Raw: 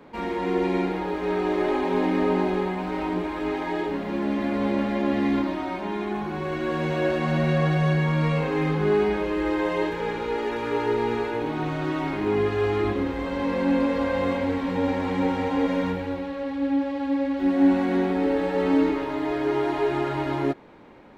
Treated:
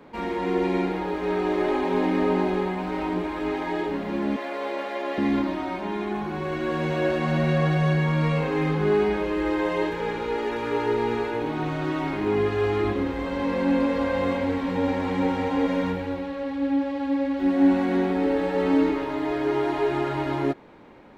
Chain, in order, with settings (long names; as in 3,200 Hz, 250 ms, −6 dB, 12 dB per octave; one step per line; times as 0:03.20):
0:04.36–0:05.18: high-pass filter 410 Hz 24 dB per octave